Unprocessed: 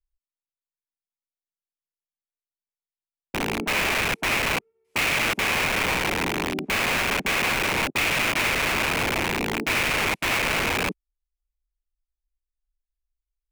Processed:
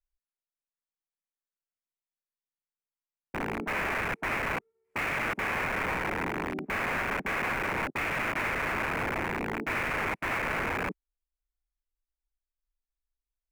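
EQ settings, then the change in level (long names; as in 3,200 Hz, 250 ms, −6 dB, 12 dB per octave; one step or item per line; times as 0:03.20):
high shelf with overshoot 2,500 Hz −10.5 dB, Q 1.5
−6.0 dB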